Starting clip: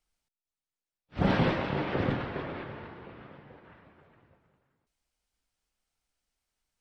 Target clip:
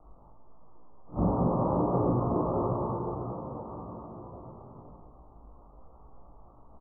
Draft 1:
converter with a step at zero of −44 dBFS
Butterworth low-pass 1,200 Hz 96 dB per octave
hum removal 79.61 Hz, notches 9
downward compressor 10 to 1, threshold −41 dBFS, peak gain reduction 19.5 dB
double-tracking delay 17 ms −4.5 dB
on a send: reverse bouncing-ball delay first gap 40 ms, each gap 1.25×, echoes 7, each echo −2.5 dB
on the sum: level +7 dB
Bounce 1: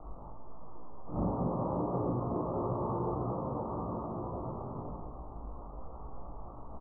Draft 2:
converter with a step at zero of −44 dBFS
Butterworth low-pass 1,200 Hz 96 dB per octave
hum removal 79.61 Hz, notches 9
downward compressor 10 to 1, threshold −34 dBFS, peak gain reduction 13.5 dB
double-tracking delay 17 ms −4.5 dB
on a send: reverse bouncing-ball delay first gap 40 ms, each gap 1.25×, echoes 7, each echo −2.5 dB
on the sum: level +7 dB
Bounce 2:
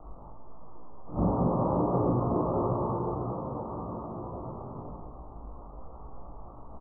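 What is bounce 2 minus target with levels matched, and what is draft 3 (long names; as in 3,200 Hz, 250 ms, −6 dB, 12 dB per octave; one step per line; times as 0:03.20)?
converter with a step at zero: distortion +9 dB
converter with a step at zero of −53 dBFS
Butterworth low-pass 1,200 Hz 96 dB per octave
hum removal 79.61 Hz, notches 9
downward compressor 10 to 1, threshold −34 dBFS, peak gain reduction 13.5 dB
double-tracking delay 17 ms −4.5 dB
on a send: reverse bouncing-ball delay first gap 40 ms, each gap 1.25×, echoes 7, each echo −2.5 dB
on the sum: level +7 dB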